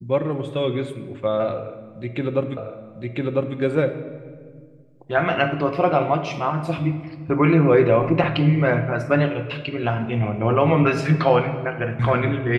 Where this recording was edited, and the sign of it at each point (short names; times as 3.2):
2.57 repeat of the last 1 s